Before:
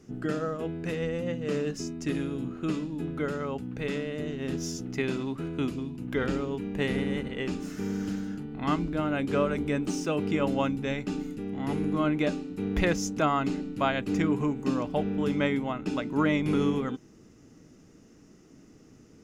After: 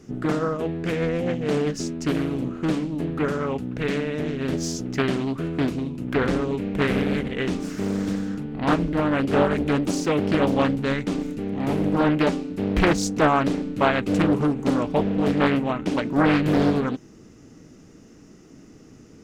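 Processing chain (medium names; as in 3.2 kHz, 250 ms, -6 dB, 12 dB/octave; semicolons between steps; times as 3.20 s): loudspeaker Doppler distortion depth 0.75 ms; trim +6.5 dB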